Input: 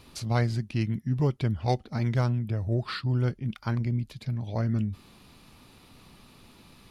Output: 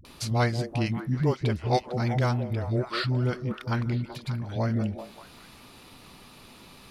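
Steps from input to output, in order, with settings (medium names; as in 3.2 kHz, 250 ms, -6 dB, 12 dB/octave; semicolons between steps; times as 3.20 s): bass shelf 280 Hz -6 dB; upward compressor, threshold -50 dBFS; phase dispersion highs, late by 51 ms, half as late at 310 Hz; on a send: repeats whose band climbs or falls 193 ms, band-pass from 430 Hz, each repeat 0.7 oct, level -6 dB; on the sum: trim +4.5 dB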